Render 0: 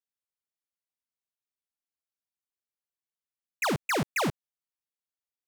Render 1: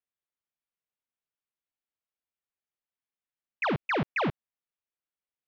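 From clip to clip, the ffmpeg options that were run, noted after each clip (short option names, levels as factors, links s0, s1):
-af "lowpass=f=3300:w=0.5412,lowpass=f=3300:w=1.3066"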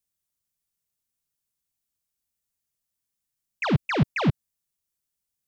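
-af "bass=f=250:g=13,treble=f=4000:g=14"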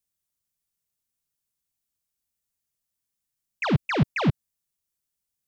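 -af anull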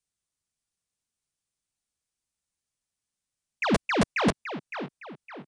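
-filter_complex "[0:a]acrossover=split=220[s0][s1];[s0]aeval=exprs='(mod(7.08*val(0)+1,2)-1)/7.08':c=same[s2];[s1]asplit=2[s3][s4];[s4]adelay=561,lowpass=f=3700:p=1,volume=0.398,asplit=2[s5][s6];[s6]adelay=561,lowpass=f=3700:p=1,volume=0.42,asplit=2[s7][s8];[s8]adelay=561,lowpass=f=3700:p=1,volume=0.42,asplit=2[s9][s10];[s10]adelay=561,lowpass=f=3700:p=1,volume=0.42,asplit=2[s11][s12];[s12]adelay=561,lowpass=f=3700:p=1,volume=0.42[s13];[s3][s5][s7][s9][s11][s13]amix=inputs=6:normalize=0[s14];[s2][s14]amix=inputs=2:normalize=0,aresample=22050,aresample=44100"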